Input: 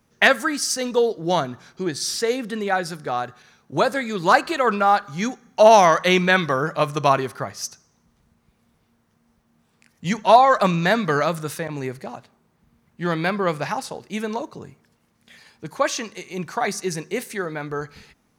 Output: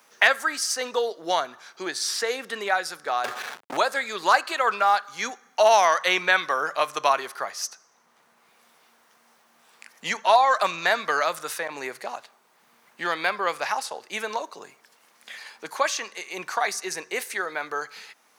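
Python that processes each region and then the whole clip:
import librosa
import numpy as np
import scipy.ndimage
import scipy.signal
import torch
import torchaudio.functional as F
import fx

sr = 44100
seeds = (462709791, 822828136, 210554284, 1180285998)

y = fx.chain(x, sr, fx.leveller(passes=5),
    fx.backlash(play_db=-29.0), at=(3.24, 3.77))
y = scipy.signal.sosfilt(scipy.signal.butter(2, 700.0, 'highpass', fs=sr, output='sos'), y)
y = fx.band_squash(y, sr, depth_pct=40)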